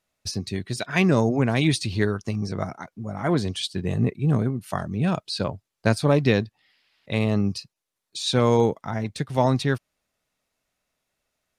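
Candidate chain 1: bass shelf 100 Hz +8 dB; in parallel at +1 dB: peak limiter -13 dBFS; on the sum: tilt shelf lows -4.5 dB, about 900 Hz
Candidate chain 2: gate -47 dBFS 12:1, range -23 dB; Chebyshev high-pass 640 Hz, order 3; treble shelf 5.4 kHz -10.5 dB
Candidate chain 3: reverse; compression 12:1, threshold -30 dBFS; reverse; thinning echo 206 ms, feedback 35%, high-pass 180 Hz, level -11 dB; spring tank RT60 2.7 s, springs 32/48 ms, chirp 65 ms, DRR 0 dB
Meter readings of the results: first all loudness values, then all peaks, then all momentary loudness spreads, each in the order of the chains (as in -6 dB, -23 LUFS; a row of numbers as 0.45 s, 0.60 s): -19.5 LUFS, -32.0 LUFS, -32.5 LUFS; -2.5 dBFS, -10.5 dBFS, -16.5 dBFS; 9 LU, 14 LU, 9 LU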